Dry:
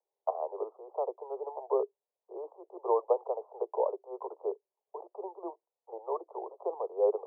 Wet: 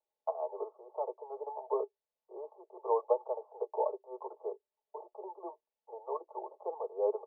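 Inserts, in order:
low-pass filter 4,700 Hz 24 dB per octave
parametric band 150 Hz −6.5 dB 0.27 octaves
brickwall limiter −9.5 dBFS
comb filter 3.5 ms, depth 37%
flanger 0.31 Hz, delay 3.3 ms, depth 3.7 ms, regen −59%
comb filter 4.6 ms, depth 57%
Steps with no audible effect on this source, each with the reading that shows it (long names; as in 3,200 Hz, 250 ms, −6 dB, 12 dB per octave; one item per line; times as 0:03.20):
low-pass filter 4,700 Hz: nothing at its input above 1,200 Hz
parametric band 150 Hz: nothing at its input below 320 Hz
brickwall limiter −9.5 dBFS: peak of its input −15.5 dBFS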